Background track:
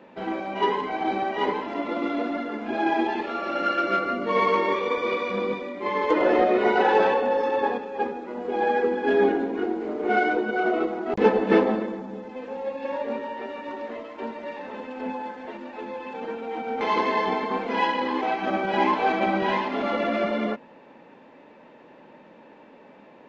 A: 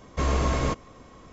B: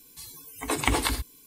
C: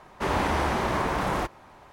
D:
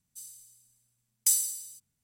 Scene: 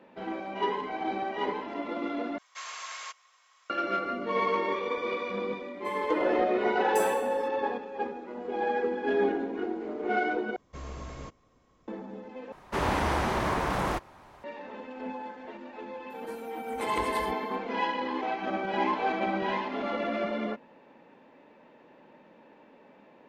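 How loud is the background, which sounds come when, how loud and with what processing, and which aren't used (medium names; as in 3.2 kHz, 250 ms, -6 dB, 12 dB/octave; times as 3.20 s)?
background track -6 dB
2.38 s: replace with A -3.5 dB + Bessel high-pass 1.6 kHz, order 4
5.69 s: add D -17 dB
10.56 s: replace with A -16.5 dB
12.52 s: replace with C -2 dB
16.10 s: add B -16 dB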